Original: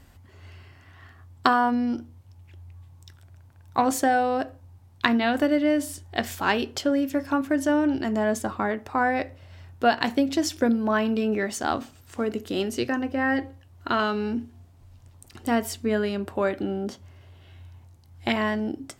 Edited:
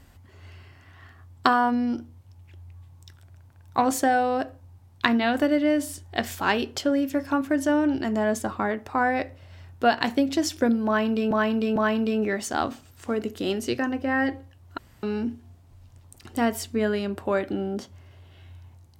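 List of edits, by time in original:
10.86–11.31 s: loop, 3 plays
13.88–14.13 s: room tone

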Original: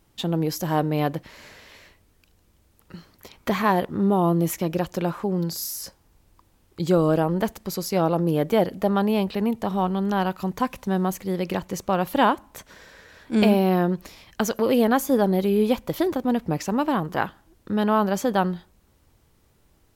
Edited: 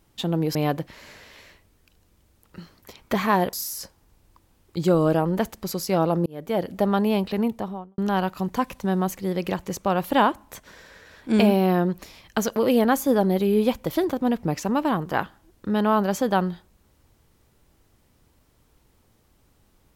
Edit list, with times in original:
0.55–0.91 s: delete
3.89–5.56 s: delete
8.29–8.80 s: fade in
9.44–10.01 s: studio fade out

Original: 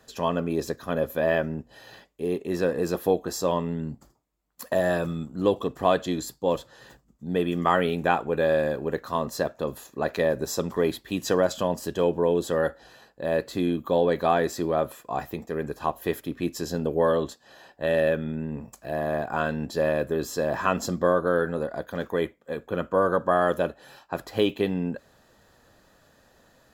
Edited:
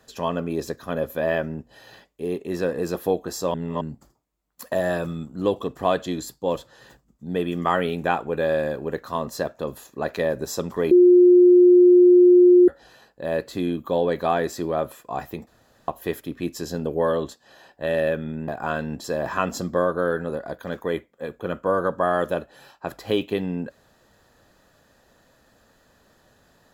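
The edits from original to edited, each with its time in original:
3.54–3.81 s: reverse
10.91–12.68 s: bleep 357 Hz -9 dBFS
15.47–15.88 s: room tone
18.48–19.18 s: delete
19.74–20.32 s: delete

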